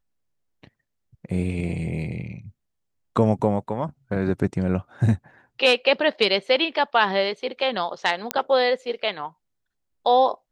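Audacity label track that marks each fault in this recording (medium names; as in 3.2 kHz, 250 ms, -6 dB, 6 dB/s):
8.310000	8.310000	pop -5 dBFS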